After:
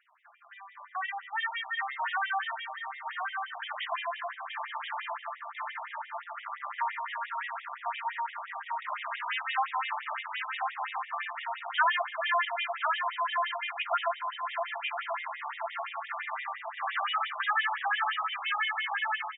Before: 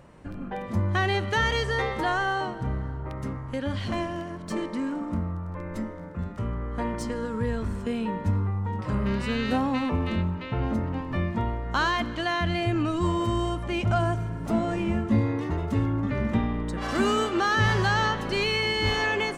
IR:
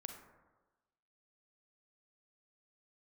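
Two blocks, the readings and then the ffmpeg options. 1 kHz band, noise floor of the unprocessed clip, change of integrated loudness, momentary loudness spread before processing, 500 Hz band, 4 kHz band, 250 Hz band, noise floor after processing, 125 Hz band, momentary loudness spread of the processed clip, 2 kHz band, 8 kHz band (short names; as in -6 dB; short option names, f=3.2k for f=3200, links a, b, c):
-0.5 dB, -37 dBFS, -5.5 dB, 9 LU, -12.0 dB, -4.5 dB, under -40 dB, -49 dBFS, under -40 dB, 10 LU, -1.5 dB, under -35 dB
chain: -filter_complex "[0:a]equalizer=f=190:t=o:w=1.7:g=-6.5,dynaudnorm=f=450:g=11:m=15dB,aecho=1:1:1067|2134|3201:0.501|0.13|0.0339,asplit=2[a][b];[b]aeval=exprs='0.119*(abs(mod(val(0)/0.119+3,4)-2)-1)':c=same,volume=-4.5dB[c];[a][c]amix=inputs=2:normalize=0,afftfilt=real='re*between(b*sr/1024,850*pow(2700/850,0.5+0.5*sin(2*PI*5.8*pts/sr))/1.41,850*pow(2700/850,0.5+0.5*sin(2*PI*5.8*pts/sr))*1.41)':imag='im*between(b*sr/1024,850*pow(2700/850,0.5+0.5*sin(2*PI*5.8*pts/sr))/1.41,850*pow(2700/850,0.5+0.5*sin(2*PI*5.8*pts/sr))*1.41)':win_size=1024:overlap=0.75,volume=-7.5dB"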